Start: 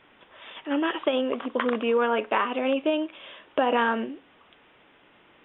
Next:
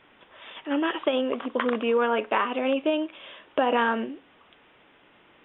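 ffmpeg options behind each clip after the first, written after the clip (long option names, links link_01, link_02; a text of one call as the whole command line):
ffmpeg -i in.wav -af anull out.wav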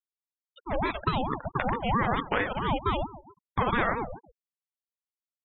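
ffmpeg -i in.wav -af "aecho=1:1:137|274|411|548|685:0.141|0.0791|0.0443|0.0248|0.0139,afftfilt=real='re*gte(hypot(re,im),0.0447)':imag='im*gte(hypot(re,im),0.0447)':win_size=1024:overlap=0.75,aeval=exprs='val(0)*sin(2*PI*480*n/s+480*0.5/4.5*sin(2*PI*4.5*n/s))':channel_layout=same" out.wav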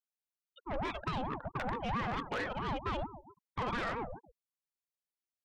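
ffmpeg -i in.wav -af "asoftclip=type=tanh:threshold=-25dB,volume=-4.5dB" out.wav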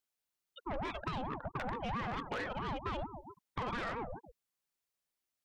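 ffmpeg -i in.wav -af "acompressor=threshold=-45dB:ratio=2.5,volume=5.5dB" out.wav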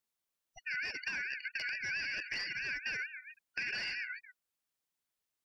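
ffmpeg -i in.wav -af "afftfilt=real='real(if(lt(b,272),68*(eq(floor(b/68),0)*2+eq(floor(b/68),1)*0+eq(floor(b/68),2)*3+eq(floor(b/68),3)*1)+mod(b,68),b),0)':imag='imag(if(lt(b,272),68*(eq(floor(b/68),0)*2+eq(floor(b/68),1)*0+eq(floor(b/68),2)*3+eq(floor(b/68),3)*1)+mod(b,68),b),0)':win_size=2048:overlap=0.75" out.wav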